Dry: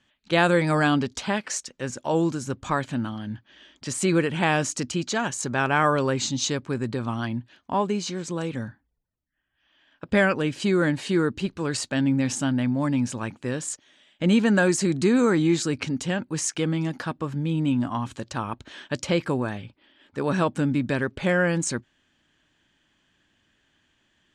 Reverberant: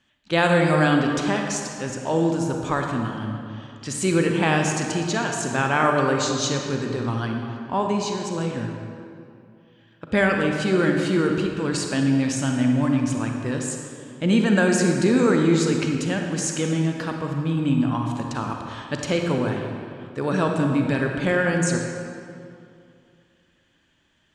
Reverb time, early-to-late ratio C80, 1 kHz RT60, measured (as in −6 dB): 2.5 s, 4.0 dB, 2.5 s